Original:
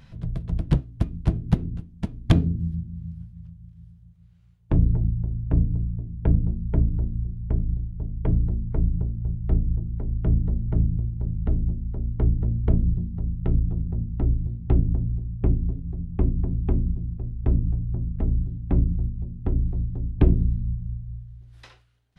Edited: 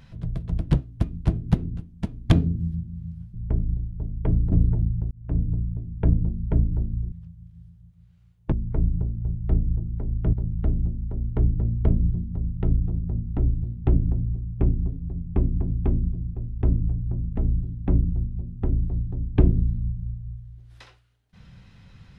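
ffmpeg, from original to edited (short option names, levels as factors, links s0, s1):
-filter_complex "[0:a]asplit=7[s0][s1][s2][s3][s4][s5][s6];[s0]atrim=end=3.342[s7];[s1]atrim=start=7.338:end=8.522[s8];[s2]atrim=start=4.738:end=5.33,asetpts=PTS-STARTPTS,afade=t=out:st=0.588:d=0.004:c=hsin[s9];[s3]atrim=start=5.33:end=7.342,asetpts=PTS-STARTPTS,afade=t=in:d=0.39[s10];[s4]atrim=start=3.338:end=4.742[s11];[s5]atrim=start=8.518:end=10.332[s12];[s6]atrim=start=11.158[s13];[s7][s8]acrossfade=d=0.004:c1=hsin:c2=hsin[s14];[s9][s10]concat=n=2:v=0:a=1[s15];[s14][s15]acrossfade=d=0.004:c1=hsin:c2=hsin[s16];[s16][s11]acrossfade=d=0.004:c1=hsin:c2=hsin[s17];[s17][s12]acrossfade=d=0.004:c1=hsin:c2=hsin[s18];[s18][s13]acrossfade=d=0.004:c1=hsin:c2=hsin"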